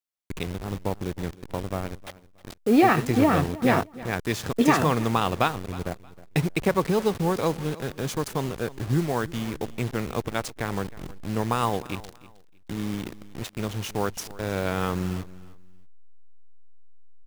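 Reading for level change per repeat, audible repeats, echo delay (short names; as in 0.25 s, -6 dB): -12.5 dB, 2, 0.314 s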